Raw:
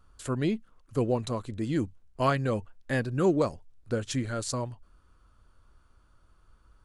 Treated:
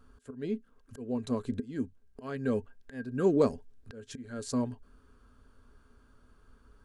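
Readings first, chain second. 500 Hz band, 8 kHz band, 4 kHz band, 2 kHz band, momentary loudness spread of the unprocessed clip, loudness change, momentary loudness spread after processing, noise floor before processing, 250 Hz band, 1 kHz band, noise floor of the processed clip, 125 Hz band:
−2.5 dB, −8.5 dB, −9.5 dB, −10.0 dB, 9 LU, −3.0 dB, 20 LU, −63 dBFS, −2.0 dB, −9.5 dB, −64 dBFS, −9.0 dB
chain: volume swells 760 ms
hollow resonant body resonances 250/420/1,600 Hz, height 15 dB, ringing for 90 ms

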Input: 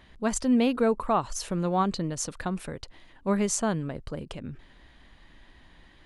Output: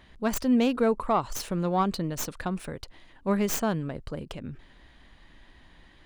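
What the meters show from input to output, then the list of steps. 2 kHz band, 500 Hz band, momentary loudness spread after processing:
+0.5 dB, 0.0 dB, 16 LU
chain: stylus tracing distortion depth 0.16 ms

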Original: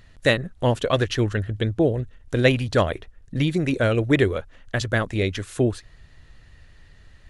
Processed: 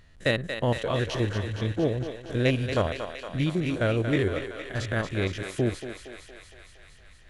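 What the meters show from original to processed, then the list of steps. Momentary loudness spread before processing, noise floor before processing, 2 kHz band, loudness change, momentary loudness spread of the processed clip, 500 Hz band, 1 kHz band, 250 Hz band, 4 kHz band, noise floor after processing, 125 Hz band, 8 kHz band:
9 LU, −51 dBFS, −5.0 dB, −5.0 dB, 9 LU, −5.0 dB, −5.0 dB, −4.5 dB, −5.0 dB, −52 dBFS, −4.0 dB, −5.0 dB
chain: spectrum averaged block by block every 50 ms
soft clipping −6.5 dBFS, distortion −29 dB
feedback echo with a high-pass in the loop 232 ms, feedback 75%, high-pass 460 Hz, level −7 dB
level −3.5 dB

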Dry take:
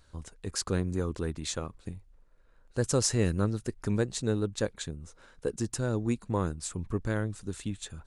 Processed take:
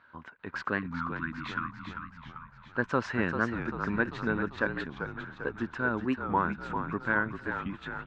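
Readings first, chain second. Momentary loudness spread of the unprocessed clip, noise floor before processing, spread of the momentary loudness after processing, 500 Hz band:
13 LU, −60 dBFS, 12 LU, −3.0 dB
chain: loudspeaker in its box 130–2,500 Hz, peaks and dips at 240 Hz +5 dB, 470 Hz −5 dB, 1,000 Hz +8 dB, 1,500 Hz +10 dB
time-frequency box erased 0:00.80–0:01.98, 340–970 Hz
spectral tilt +2.5 dB per octave
echo with shifted repeats 393 ms, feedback 57%, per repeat −36 Hz, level −7.5 dB
wow of a warped record 45 rpm, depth 160 cents
level +2 dB

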